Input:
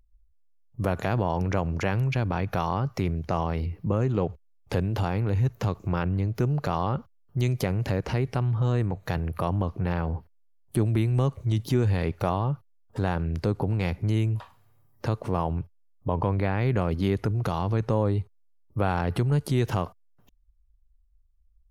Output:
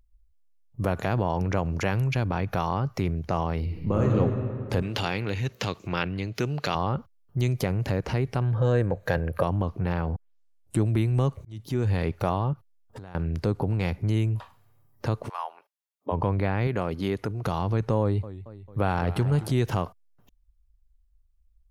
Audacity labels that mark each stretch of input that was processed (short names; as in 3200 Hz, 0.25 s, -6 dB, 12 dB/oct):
1.650000	2.250000	high shelf 5000 Hz +5.5 dB
3.620000	4.130000	reverb throw, RT60 2.5 s, DRR -1.5 dB
4.820000	6.750000	weighting filter D
8.410000	9.430000	small resonant body resonances 530/1600 Hz, height 13 dB, ringing for 30 ms
10.160000	10.160000	tape start 0.66 s
11.450000	11.940000	fade in
12.530000	13.150000	compressor 10:1, threshold -37 dBFS
15.280000	16.110000	HPF 1100 Hz -> 260 Hz 24 dB/oct
16.670000	17.450000	low shelf 140 Hz -10.5 dB
18.010000	19.520000	warbling echo 0.223 s, feedback 58%, depth 145 cents, level -14.5 dB